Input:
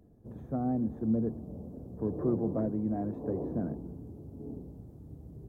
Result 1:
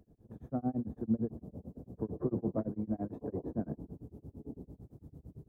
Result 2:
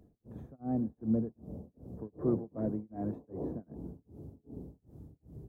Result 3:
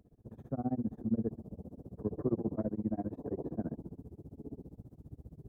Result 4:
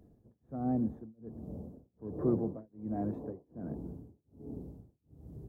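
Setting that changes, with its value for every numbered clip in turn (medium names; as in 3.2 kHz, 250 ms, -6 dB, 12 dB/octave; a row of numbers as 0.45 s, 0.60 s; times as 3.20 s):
tremolo, rate: 8.9 Hz, 2.6 Hz, 15 Hz, 1.3 Hz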